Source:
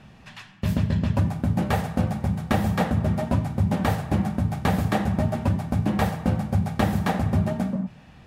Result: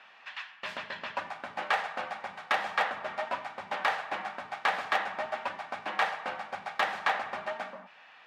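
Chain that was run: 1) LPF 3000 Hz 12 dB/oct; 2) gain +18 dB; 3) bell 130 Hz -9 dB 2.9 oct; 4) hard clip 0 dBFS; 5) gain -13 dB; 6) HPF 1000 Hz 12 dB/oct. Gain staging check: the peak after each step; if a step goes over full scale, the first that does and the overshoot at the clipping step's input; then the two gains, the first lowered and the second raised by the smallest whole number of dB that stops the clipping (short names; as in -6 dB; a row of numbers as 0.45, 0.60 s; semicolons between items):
-7.5, +10.5, +6.5, 0.0, -13.0, -12.5 dBFS; step 2, 6.5 dB; step 2 +11 dB, step 5 -6 dB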